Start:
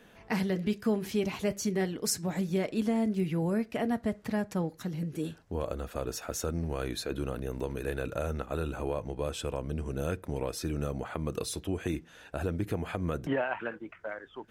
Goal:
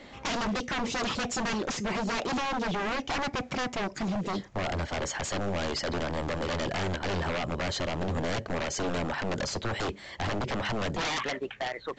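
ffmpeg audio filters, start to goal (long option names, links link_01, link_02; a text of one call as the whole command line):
ffmpeg -i in.wav -af "asetrate=53361,aresample=44100,aeval=exprs='0.0211*(abs(mod(val(0)/0.0211+3,4)-2)-1)':channel_layout=same,volume=8.5dB" -ar 16000 -c:a pcm_mulaw out.wav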